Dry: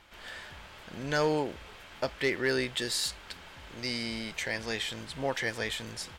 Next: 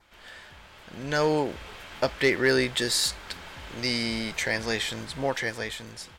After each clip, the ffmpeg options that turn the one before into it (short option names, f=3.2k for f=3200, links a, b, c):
-af "dynaudnorm=f=220:g=11:m=9dB,adynamicequalizer=threshold=0.00562:dfrequency=2900:dqfactor=3.7:tfrequency=2900:tqfactor=3.7:attack=5:release=100:ratio=0.375:range=2.5:mode=cutabove:tftype=bell,volume=-2.5dB"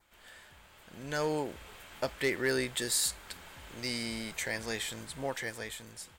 -af "aexciter=amount=3:drive=4.5:freq=7.2k,volume=-8dB"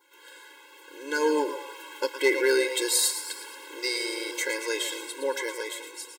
-filter_complex "[0:a]asplit=7[a][b][c][d][e][f][g];[b]adelay=114,afreqshift=130,volume=-10dB[h];[c]adelay=228,afreqshift=260,volume=-15.7dB[i];[d]adelay=342,afreqshift=390,volume=-21.4dB[j];[e]adelay=456,afreqshift=520,volume=-27dB[k];[f]adelay=570,afreqshift=650,volume=-32.7dB[l];[g]adelay=684,afreqshift=780,volume=-38.4dB[m];[a][h][i][j][k][l][m]amix=inputs=7:normalize=0,afftfilt=real='re*eq(mod(floor(b*sr/1024/280),2),1)':imag='im*eq(mod(floor(b*sr/1024/280),2),1)':win_size=1024:overlap=0.75,volume=9dB"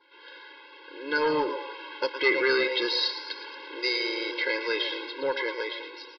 -filter_complex "[0:a]acrossover=split=730|2300[a][b][c];[a]asoftclip=type=tanh:threshold=-27dB[d];[d][b][c]amix=inputs=3:normalize=0,aresample=11025,aresample=44100,volume=2.5dB"